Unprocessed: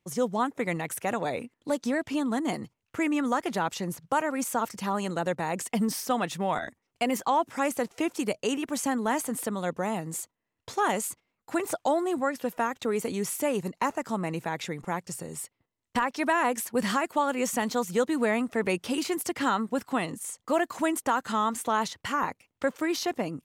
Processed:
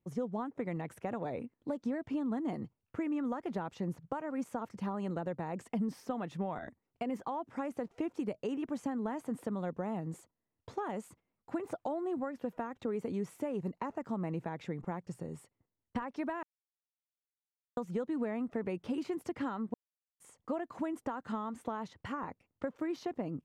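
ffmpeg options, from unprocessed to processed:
-filter_complex "[0:a]asplit=5[a][b][c][d][e];[a]atrim=end=16.43,asetpts=PTS-STARTPTS,afade=t=out:st=16.426:d=0.004:c=hsin[f];[b]atrim=start=16.43:end=17.77,asetpts=PTS-STARTPTS,volume=0[g];[c]atrim=start=17.77:end=19.74,asetpts=PTS-STARTPTS,afade=t=in:d=0.004:c=hsin,afade=t=out:st=1.966:d=0.004:c=hsin[h];[d]atrim=start=19.74:end=20.2,asetpts=PTS-STARTPTS,volume=0[i];[e]atrim=start=20.2,asetpts=PTS-STARTPTS,afade=t=in:d=0.004:c=hsin[j];[f][g][h][i][j]concat=n=5:v=0:a=1,acompressor=threshold=-28dB:ratio=6,lowpass=f=1k:p=1,lowshelf=f=370:g=4.5,volume=-5dB"

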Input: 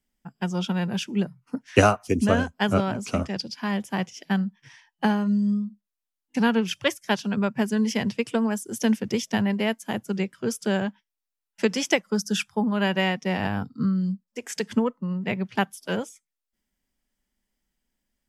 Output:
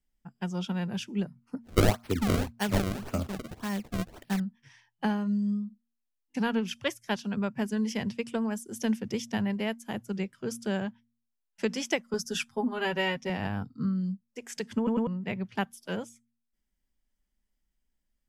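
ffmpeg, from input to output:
-filter_complex "[0:a]asettb=1/sr,asplit=3[a][b][c];[a]atrim=end=1.634[d];[b]atrim=start=1.63:end=4.4,asetpts=PTS-STARTPTS,afade=t=in:d=0.004:c=qsin,afade=t=out:st=2.766:d=0.004:c=qsin,acrusher=samples=29:mix=1:aa=0.000001:lfo=1:lforange=46.4:lforate=1.8[e];[c]atrim=start=4.396[f];[d][e]acrossfade=d=0.004:c1=hsin:c2=qsin[g];[g][f]acrossfade=d=0.004:c1=qsin:c2=hsin,asettb=1/sr,asplit=3[h][i][j];[h]atrim=end=12.134[k];[i]atrim=start=12.13:end=13.3,asetpts=PTS-STARTPTS,afade=t=in:d=0.004:c=qsin,afade=t=out:st=1.166:d=0.004:c=qsin,aecho=1:1:7.5:0.91,atrim=end_sample=51597[l];[j]atrim=start=13.296[m];[k][l]acrossfade=d=0.004:c1=hsin:c2=qsin[n];[n][m]acrossfade=d=0.004:c1=qsin:c2=hsin,asplit=4[o][p][q][r];[o]atrim=end=14.872[s];[p]atrim=start=14.768:end=14.872[t];[q]atrim=start=14.768:end=14.872[u];[r]atrim=start=15.068[v];[s][t]acrossfade=d=0.004:c1=hsin:c2=hsin[w];[w][u]acrossfade=d=0.004:c1=hsin:c2=hsin[x];[x][v]acrossfade=d=0.004:c1=hsin:c2=hsin,lowshelf=f=72:g=12,bandreject=f=116.9:t=h:w=4,bandreject=f=233.8:t=h:w=4,volume=-7dB"

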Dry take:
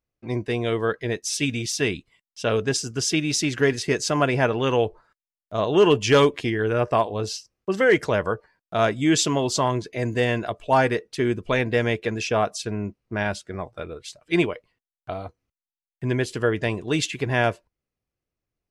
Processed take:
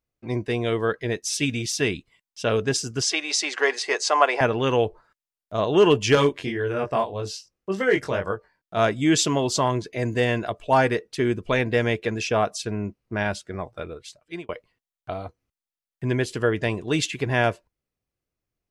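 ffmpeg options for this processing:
-filter_complex "[0:a]asettb=1/sr,asplit=3[a][b][c];[a]atrim=end=3.024[d];[b]atrim=start=3.02:end=4.41,asetpts=PTS-STARTPTS,afade=t=in:d=0.004:c=qsin,afade=t=out:st=1.386:d=0.004:c=qsin,highpass=f=430:w=0.5412,highpass=f=430:w=1.3066,equalizer=f=800:t=q:w=4:g=9,equalizer=f=1.1k:t=q:w=4:g=8,equalizer=f=2k:t=q:w=4:g=4,equalizer=f=4.4k:t=q:w=4:g=4,lowpass=f=9.4k:w=0.5412,lowpass=f=9.4k:w=1.3066[e];[c]atrim=start=4.406[f];[d][e]acrossfade=d=0.004:c1=hsin:c2=qsin[g];[g][f]acrossfade=d=0.004:c1=qsin:c2=hsin,asettb=1/sr,asplit=3[h][i][j];[h]atrim=end=6.154[k];[i]atrim=start=6.15:end=8.77,asetpts=PTS-STARTPTS,afade=t=in:d=0.004:c=qsin,afade=t=out:st=2.616:d=0.004:c=qsin,flanger=delay=20:depth=2.4:speed=1.8[l];[j]atrim=start=8.766[m];[k][l]acrossfade=d=0.004:c1=hsin:c2=qsin[n];[n][m]acrossfade=d=0.004:c1=qsin:c2=hsin,asplit=2[o][p];[o]atrim=end=14.49,asetpts=PTS-STARTPTS,afade=t=out:st=13.87:d=0.62[q];[p]atrim=start=14.49,asetpts=PTS-STARTPTS,afade=t=in:d=0.004:c=hsin[r];[q][r]concat=n=2:v=0:a=1"

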